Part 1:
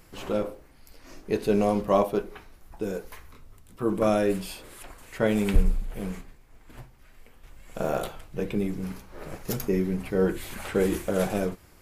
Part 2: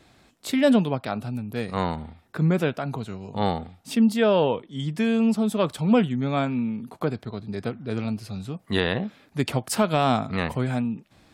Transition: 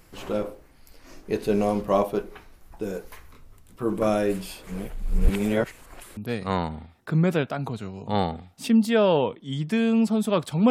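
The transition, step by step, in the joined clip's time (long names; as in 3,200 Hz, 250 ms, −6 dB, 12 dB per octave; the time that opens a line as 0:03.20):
part 1
0:04.67–0:06.17: reverse
0:06.17: continue with part 2 from 0:01.44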